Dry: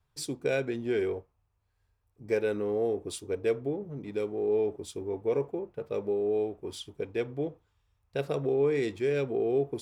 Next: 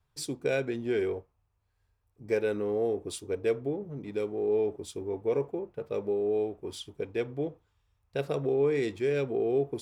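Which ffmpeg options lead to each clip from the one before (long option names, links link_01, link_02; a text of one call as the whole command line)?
ffmpeg -i in.wav -af anull out.wav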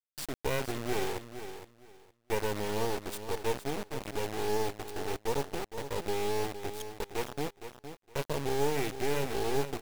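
ffmpeg -i in.wav -af "acrusher=bits=3:dc=4:mix=0:aa=0.000001,aecho=1:1:463|926|1389:0.299|0.0627|0.0132" out.wav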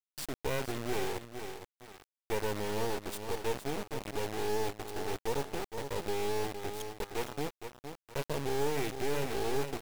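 ffmpeg -i in.wav -af "asoftclip=type=tanh:threshold=-20.5dB,acrusher=bits=5:dc=4:mix=0:aa=0.000001" out.wav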